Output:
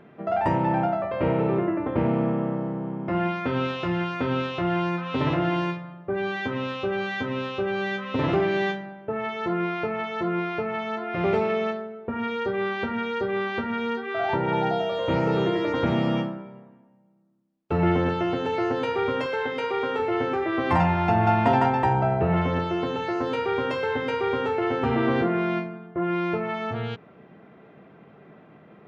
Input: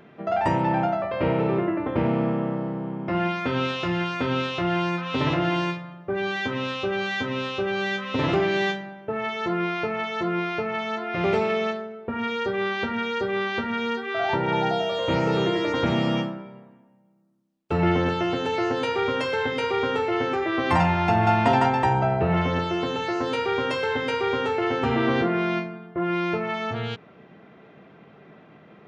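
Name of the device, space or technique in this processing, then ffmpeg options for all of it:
through cloth: -filter_complex "[0:a]highshelf=f=3300:g=-11,asettb=1/sr,asplit=3[s0][s1][s2];[s0]atrim=end=19.264[s3];[s1]atrim=start=19.26:end=20,asetpts=PTS-STARTPTS,afade=t=in:d=0.004:c=qsin,afade=t=out:st=0.736:d=0.004:c=qsin,highpass=f=310:p=1[s4];[s2]atrim=start=19.996[s5];[s3][s4]acrossfade=d=0.004:c1=hsin:c2=qsin[s6];[s6][s5]acrossfade=d=0.004:c1=qsin:c2=hsin"

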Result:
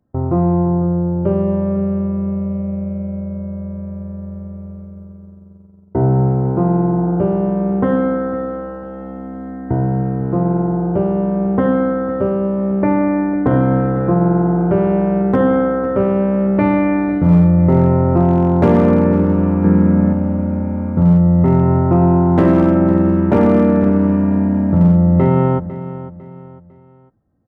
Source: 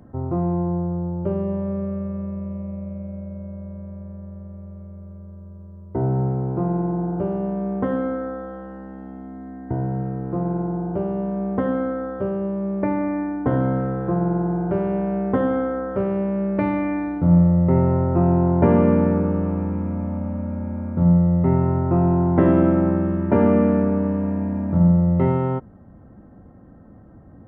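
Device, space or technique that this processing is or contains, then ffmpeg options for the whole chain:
clipper into limiter: -filter_complex "[0:a]agate=range=0.0398:threshold=0.0141:ratio=16:detection=peak,asoftclip=type=hard:threshold=0.316,alimiter=limit=0.224:level=0:latency=1:release=29,asettb=1/sr,asplit=3[s0][s1][s2];[s0]atrim=end=19.644[s3];[s1]atrim=start=19.64:end=20.13,asetpts=PTS-STARTPTS,afade=t=in:d=0.004:c=qsin,afade=t=out:st=0.486:d=0.004:c=qsin,equalizer=f=160:t=o:w=0.67:g=10,equalizer=f=400:t=o:w=0.67:g=8,equalizer=f=1600:t=o:w=0.67:g=9[s4];[s2]atrim=start=20.126[s5];[s3][s4]acrossfade=d=0.004:c1=hsin:c2=qsin[s6];[s6][s5]acrossfade=d=0.004:c1=qsin:c2=hsin,aecho=1:1:501|1002|1503:0.188|0.0678|0.0244,volume=2.37"

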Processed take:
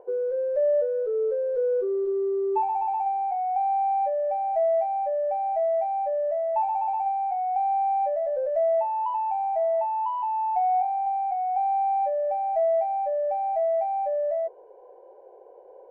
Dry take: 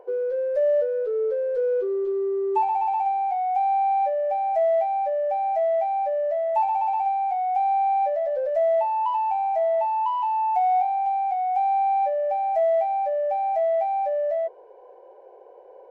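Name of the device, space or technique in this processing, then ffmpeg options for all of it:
through cloth: -af "highshelf=f=2000:g=-17"

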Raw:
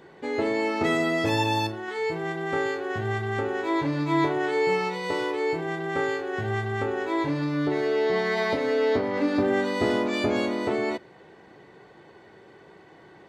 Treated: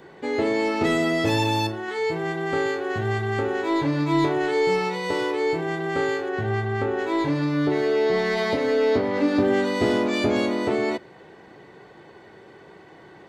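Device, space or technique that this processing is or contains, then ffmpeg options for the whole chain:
one-band saturation: -filter_complex "[0:a]asettb=1/sr,asplit=3[s0][s1][s2];[s0]atrim=end=6.294[s3];[s1]atrim=start=6.29:end=6.99,asetpts=PTS-STARTPTS,afade=t=in:d=0.004:c=qsin,afade=t=out:st=0.696:d=0.004:c=qsin,highshelf=f=4000:g=-9[s4];[s2]atrim=start=6.986[s5];[s3][s4]acrossfade=d=0.004:c1=hsin:c2=qsin[s6];[s6][s5]acrossfade=d=0.004:c1=qsin:c2=hsin,acrossover=split=520|3200[s7][s8][s9];[s8]asoftclip=type=tanh:threshold=0.0422[s10];[s7][s10][s9]amix=inputs=3:normalize=0,volume=1.5"

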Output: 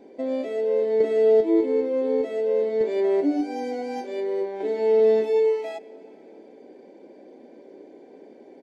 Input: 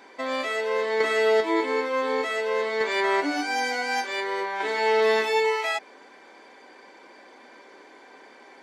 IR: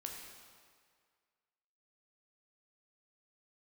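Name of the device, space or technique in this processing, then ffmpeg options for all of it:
compressed reverb return: -filter_complex "[0:a]firequalizer=gain_entry='entry(340,0);entry(610,-5);entry(1100,-29);entry(2300,-22)':delay=0.05:min_phase=1,asplit=2[s0][s1];[1:a]atrim=start_sample=2205[s2];[s1][s2]afir=irnorm=-1:irlink=0,acompressor=threshold=0.00708:ratio=6,volume=0.531[s3];[s0][s3]amix=inputs=2:normalize=0,volume=2"

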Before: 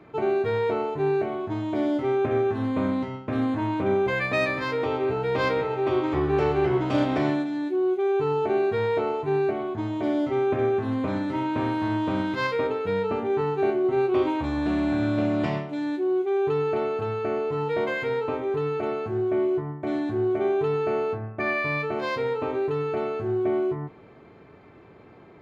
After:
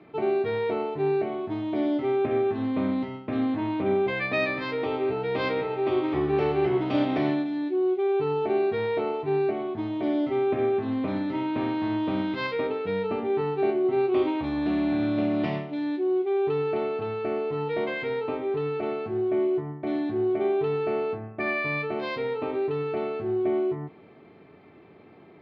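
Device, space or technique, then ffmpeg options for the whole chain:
guitar cabinet: -af "highpass=110,equalizer=f=120:t=q:w=4:g=-5,equalizer=f=520:t=q:w=4:g=-4,equalizer=f=1000:t=q:w=4:g=-5,equalizer=f=1500:t=q:w=4:g=-6,lowpass=f=4500:w=0.5412,lowpass=f=4500:w=1.3066"

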